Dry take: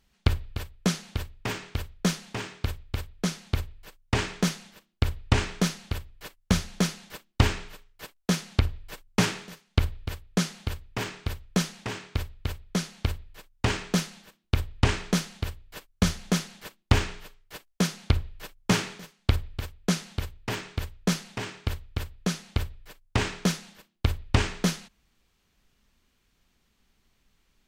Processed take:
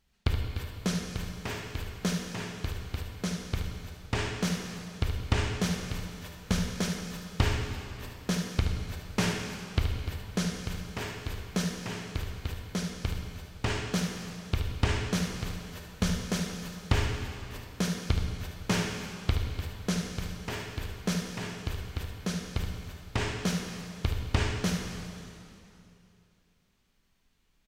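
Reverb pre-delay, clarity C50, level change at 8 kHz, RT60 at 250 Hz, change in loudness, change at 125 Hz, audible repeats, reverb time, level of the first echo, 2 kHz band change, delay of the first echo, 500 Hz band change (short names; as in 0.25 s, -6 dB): 8 ms, 2.5 dB, -3.5 dB, 2.9 s, -3.5 dB, -3.0 dB, 1, 2.8 s, -8.5 dB, -3.0 dB, 74 ms, -2.5 dB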